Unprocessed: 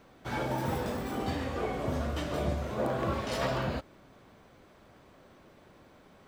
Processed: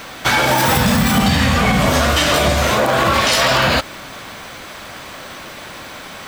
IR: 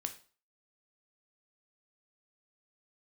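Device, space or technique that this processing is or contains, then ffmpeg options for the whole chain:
mastering chain: -filter_complex "[0:a]asettb=1/sr,asplit=3[link_01][link_02][link_03];[link_01]atrim=end=0.774[link_04];[link_02]atrim=start=0.77:end=1.87,asetpts=PTS-STARTPTS,afade=type=in:duration=0.004:curve=qsin,afade=type=out:start_time=1.096:duration=0.004:curve=qsin,lowshelf=frequency=260:width_type=q:width=3:gain=8[link_05];[link_03]atrim=start=1.866[link_06];[link_04][link_05]acrossfade=duration=0.004:curve1=hsin:curve2=qsin[link_07];[link_07][link_06]acrossfade=duration=0.004:curve1=qsin:curve2=hsin,equalizer=frequency=400:width_type=o:width=0.33:gain=-4,acompressor=threshold=-31dB:ratio=2.5,asoftclip=type=tanh:threshold=-22.5dB,tiltshelf=frequency=970:gain=-8,alimiter=level_in=30dB:limit=-1dB:release=50:level=0:latency=1,volume=-4.5dB"

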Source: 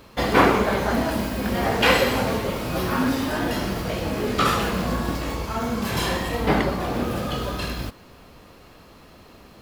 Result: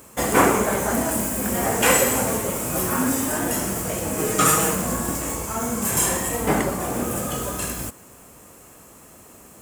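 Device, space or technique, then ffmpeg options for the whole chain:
budget condenser microphone: -filter_complex "[0:a]highpass=frequency=90:poles=1,highshelf=frequency=5800:width_type=q:width=3:gain=11.5,asettb=1/sr,asplit=3[link_01][link_02][link_03];[link_01]atrim=end=4.184[link_04];[link_02]atrim=start=4.18:end=4.75,asetpts=PTS-STARTPTS,afade=type=in:duration=0.004:curve=qsin,afade=type=out:start_time=0.566:duration=0.004:curve=qsin,aecho=1:1:6.4:0.87,atrim=end_sample=25137[link_05];[link_03]atrim=start=4.746[link_06];[link_04][link_05]acrossfade=duration=0.004:curve1=hsin:curve2=qsin[link_07];[link_07][link_06]acrossfade=duration=0.004:curve1=qsin:curve2=hsin"

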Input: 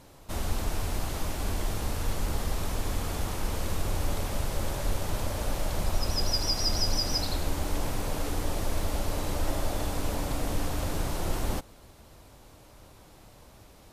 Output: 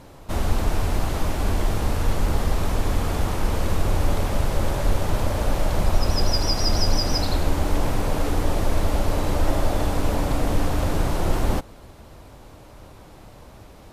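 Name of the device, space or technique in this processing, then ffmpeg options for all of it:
behind a face mask: -af "highshelf=frequency=3200:gain=-8,volume=8.5dB"

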